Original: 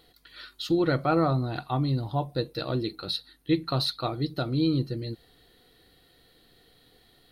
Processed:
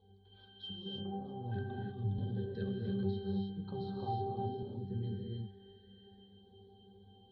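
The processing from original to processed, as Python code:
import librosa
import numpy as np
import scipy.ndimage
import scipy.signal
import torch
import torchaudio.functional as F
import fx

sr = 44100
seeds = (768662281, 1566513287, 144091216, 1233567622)

y = scipy.signal.sosfilt(scipy.signal.bessel(2, 4000.0, 'lowpass', norm='mag', fs=sr, output='sos'), x)
y = fx.over_compress(y, sr, threshold_db=-33.0, ratio=-1.0)
y = fx.filter_lfo_notch(y, sr, shape='square', hz=0.33, low_hz=890.0, high_hz=1800.0, q=0.84)
y = fx.octave_resonator(y, sr, note='G', decay_s=0.56)
y = fx.echo_thinned(y, sr, ms=649, feedback_pct=54, hz=740.0, wet_db=-19.5)
y = fx.rev_gated(y, sr, seeds[0], gate_ms=340, shape='rising', drr_db=-0.5)
y = fx.band_squash(y, sr, depth_pct=70, at=(2.18, 4.63))
y = y * librosa.db_to_amplitude(13.0)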